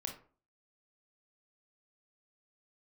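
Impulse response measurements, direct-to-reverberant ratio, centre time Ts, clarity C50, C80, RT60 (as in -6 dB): 2.5 dB, 18 ms, 8.0 dB, 14.0 dB, 0.40 s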